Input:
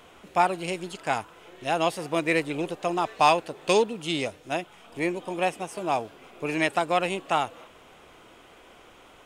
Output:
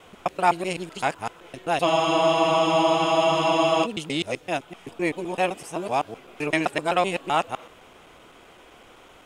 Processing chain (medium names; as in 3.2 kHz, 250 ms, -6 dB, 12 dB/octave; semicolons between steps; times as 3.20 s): time reversed locally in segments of 128 ms; spectral freeze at 1.89 s, 1.95 s; trim +2 dB